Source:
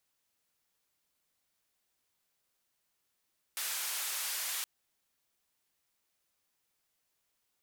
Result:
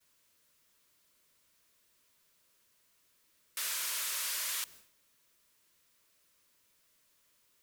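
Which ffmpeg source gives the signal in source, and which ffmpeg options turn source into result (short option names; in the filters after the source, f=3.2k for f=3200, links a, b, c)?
-f lavfi -i "anoisesrc=c=white:d=1.07:r=44100:seed=1,highpass=f=970,lowpass=f=15000,volume=-29.6dB"
-af "aeval=exprs='val(0)+0.5*0.00316*sgn(val(0))':c=same,agate=range=-33dB:threshold=-48dB:ratio=3:detection=peak,asuperstop=centerf=780:order=8:qfactor=4.1"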